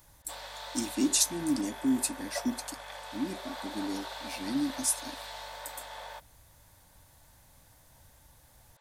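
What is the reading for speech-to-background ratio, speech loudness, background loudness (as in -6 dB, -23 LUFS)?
10.0 dB, -32.0 LUFS, -42.0 LUFS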